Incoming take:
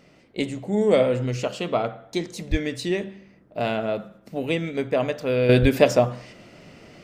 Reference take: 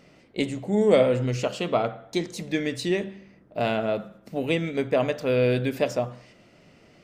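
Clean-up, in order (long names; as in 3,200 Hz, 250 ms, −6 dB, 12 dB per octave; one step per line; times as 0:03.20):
0:02.50–0:02.62: high-pass filter 140 Hz 24 dB per octave
0:05.61–0:05.73: high-pass filter 140 Hz 24 dB per octave
level 0 dB, from 0:05.49 −8 dB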